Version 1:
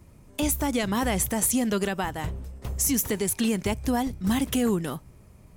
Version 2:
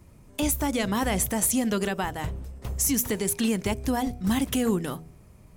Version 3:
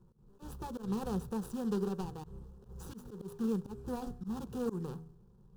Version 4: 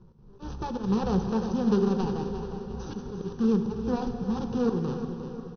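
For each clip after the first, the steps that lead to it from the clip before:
de-hum 80.77 Hz, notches 9
median filter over 41 samples; fixed phaser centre 420 Hz, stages 8; auto swell 0.132 s; gain -4.5 dB
brick-wall FIR low-pass 6300 Hz; on a send: feedback echo 0.353 s, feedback 44%, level -10 dB; on the sum: plate-style reverb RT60 4.1 s, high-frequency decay 0.85×, DRR 6.5 dB; gain +9 dB

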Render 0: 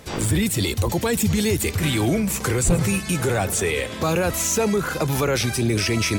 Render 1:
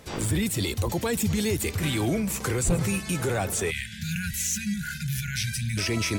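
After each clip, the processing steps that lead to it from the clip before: spectral delete 3.71–5.78, 230–1400 Hz; gain -5 dB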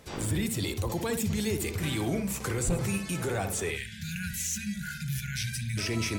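tape echo 64 ms, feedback 24%, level -4.5 dB, low-pass 1200 Hz; gain -4.5 dB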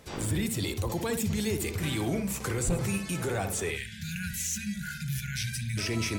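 hard clip -21 dBFS, distortion -38 dB

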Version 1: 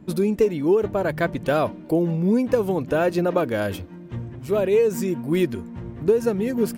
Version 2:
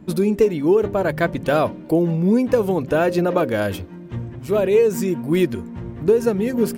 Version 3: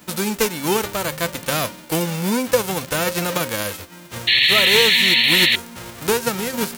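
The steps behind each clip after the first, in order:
de-hum 133.4 Hz, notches 4; gain +3 dB
spectral whitening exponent 0.3; small resonant body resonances 510/1300 Hz, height 9 dB, ringing for 85 ms; painted sound noise, 4.27–5.56, 1700–4400 Hz -11 dBFS; gain -4.5 dB

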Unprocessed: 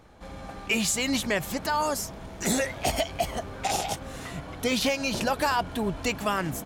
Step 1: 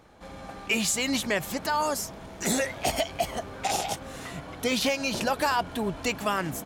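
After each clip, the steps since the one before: low shelf 100 Hz -7.5 dB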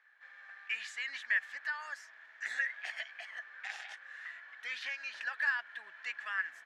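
ladder band-pass 1800 Hz, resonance 85%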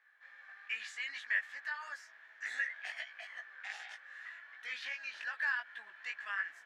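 chorus 2.6 Hz, delay 17 ms, depth 3 ms; gain +1 dB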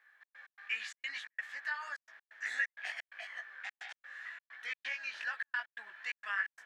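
step gate "xx.x.xxx.xx.xxx" 130 bpm -60 dB; gain +2.5 dB

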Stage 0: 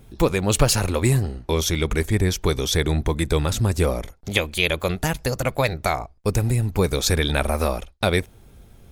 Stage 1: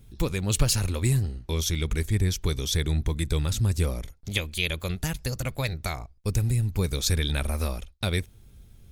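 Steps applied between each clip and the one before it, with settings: EQ curve 100 Hz 0 dB, 730 Hz -12 dB, 3900 Hz -2 dB; gain -2 dB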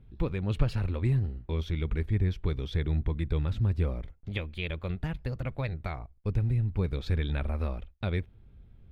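air absorption 450 m; gain -2.5 dB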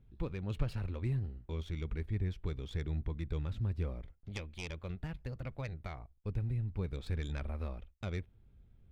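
tracing distortion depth 0.1 ms; gain -8 dB

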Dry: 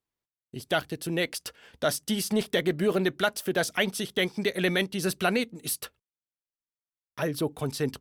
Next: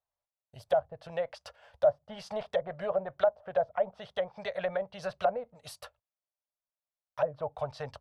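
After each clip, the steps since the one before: EQ curve 100 Hz 0 dB, 340 Hz -26 dB, 590 Hz +11 dB, 2200 Hz -6 dB, 4800 Hz -6 dB, 8300 Hz -11 dB; treble ducked by the level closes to 680 Hz, closed at -21.5 dBFS; gain -3.5 dB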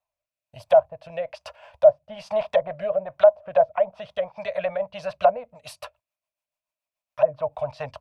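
thirty-one-band EQ 400 Hz -10 dB, 630 Hz +10 dB, 1000 Hz +10 dB, 2500 Hz +11 dB; rotary speaker horn 1.1 Hz, later 7 Hz, at 3.08; gain +4.5 dB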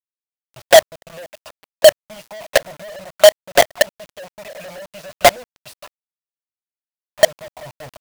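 companded quantiser 2-bit; crossover distortion -30 dBFS; gain -1 dB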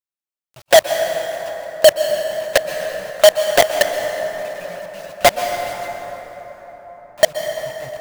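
plate-style reverb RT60 4.8 s, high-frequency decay 0.45×, pre-delay 0.11 s, DRR 5 dB; gain -1.5 dB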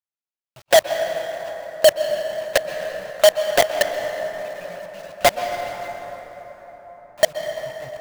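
median filter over 5 samples; gain -3.5 dB

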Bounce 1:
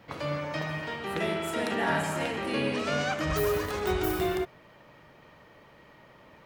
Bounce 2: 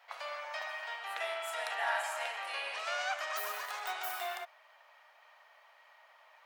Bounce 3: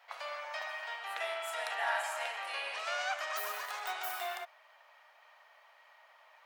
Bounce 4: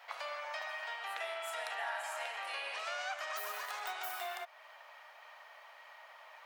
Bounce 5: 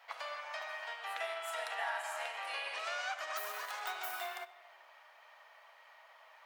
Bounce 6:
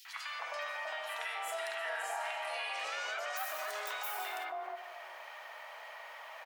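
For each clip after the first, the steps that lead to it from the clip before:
Chebyshev high-pass 680 Hz, order 4; gain -3.5 dB
nothing audible
compressor 2.5:1, threshold -48 dBFS, peak gain reduction 13 dB; gain +6 dB
shoebox room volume 1800 m³, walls mixed, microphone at 0.66 m; upward expander 1.5:1, over -49 dBFS; gain +1.5 dB
three bands offset in time highs, mids, lows 50/310 ms, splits 1200/4200 Hz; fast leveller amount 50%; gain +1 dB

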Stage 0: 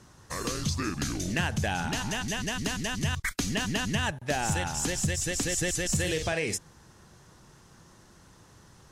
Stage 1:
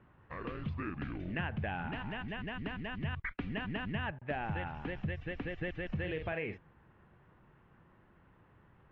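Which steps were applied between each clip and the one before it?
steep low-pass 2700 Hz 36 dB/oct; gain -7.5 dB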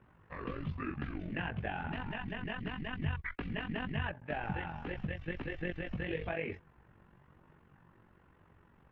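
chorus voices 2, 1 Hz, delay 15 ms, depth 3.2 ms; AM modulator 46 Hz, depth 45%; gain +5.5 dB

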